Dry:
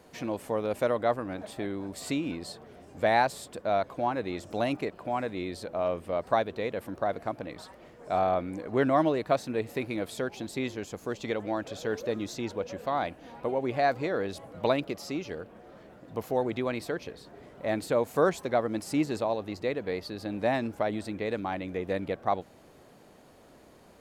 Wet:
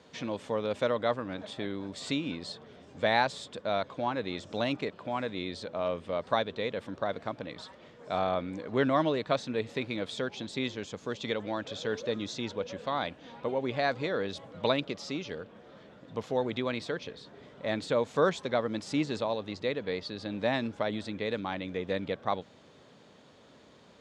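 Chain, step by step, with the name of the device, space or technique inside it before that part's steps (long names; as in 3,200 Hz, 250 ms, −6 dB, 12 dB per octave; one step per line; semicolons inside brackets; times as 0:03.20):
car door speaker (loudspeaker in its box 91–7,100 Hz, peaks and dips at 340 Hz −5 dB, 720 Hz −6 dB, 3,500 Hz +8 dB)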